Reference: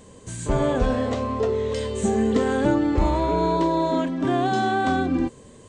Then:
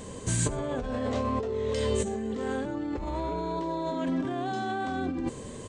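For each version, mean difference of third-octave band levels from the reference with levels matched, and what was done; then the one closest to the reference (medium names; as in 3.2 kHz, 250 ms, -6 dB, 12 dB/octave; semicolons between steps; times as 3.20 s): 4.5 dB: in parallel at +2.5 dB: peak limiter -16.5 dBFS, peak gain reduction 8 dB; on the sum: compressor with a negative ratio -23 dBFS, ratio -1; delay 95 ms -22 dB; trim -7.5 dB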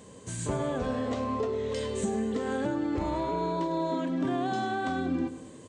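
2.0 dB: high-pass 87 Hz; compression, threshold -25 dBFS, peak gain reduction 9.5 dB; feedback delay 103 ms, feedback 54%, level -14 dB; trim -2 dB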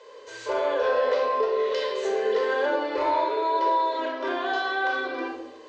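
9.5 dB: elliptic band-pass 450–5200 Hz, stop band 40 dB; peak limiter -21 dBFS, peak gain reduction 7 dB; simulated room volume 2700 m³, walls furnished, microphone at 4.9 m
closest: second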